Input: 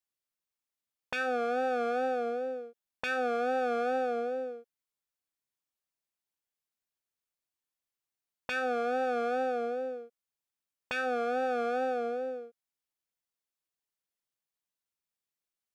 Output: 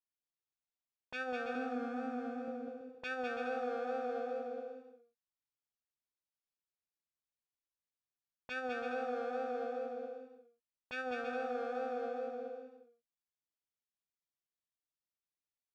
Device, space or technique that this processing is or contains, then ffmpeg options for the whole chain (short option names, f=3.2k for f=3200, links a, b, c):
ASMR close-microphone chain: -filter_complex "[0:a]lowshelf=f=220:g=7.5,acompressor=threshold=-37dB:ratio=8,lowpass=5.9k,highshelf=f=6.5k:g=5,agate=range=-21dB:threshold=-38dB:ratio=16:detection=peak,asettb=1/sr,asplit=3[a][b][c];[a]atrim=end=1.554[d];[b]atrim=start=1.55:end=2.48,asetpts=PTS-STARTPTS,afade=t=in:d=0.004:c=qsin,afade=t=out:st=0.926:d=0.004:c=qsin,equalizer=f=250:t=o:w=1:g=10,equalizer=f=500:t=o:w=1:g=-9,equalizer=f=4k:t=o:w=1:g=-5[e];[c]atrim=start=2.476[f];[d][e]acrossfade=d=0.004:c1=hsin:c2=qsin[g];[g][f]acrossfade=d=0.004:c1=qsin:c2=hsin,aecho=1:1:200|330|414.5|469.4|505.1:0.631|0.398|0.251|0.158|0.1,volume=8.5dB"